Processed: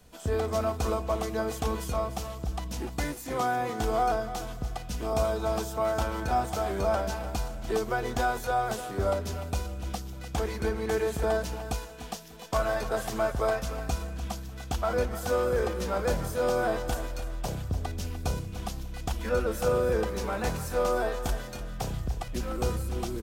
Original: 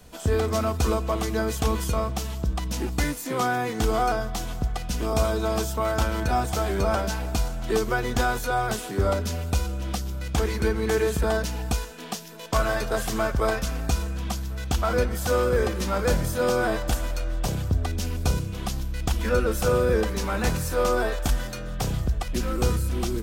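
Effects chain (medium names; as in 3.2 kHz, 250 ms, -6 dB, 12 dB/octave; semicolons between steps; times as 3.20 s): dynamic bell 690 Hz, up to +6 dB, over -38 dBFS, Q 1.2; on a send: feedback delay 297 ms, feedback 27%, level -12 dB; on the sum: trim -7 dB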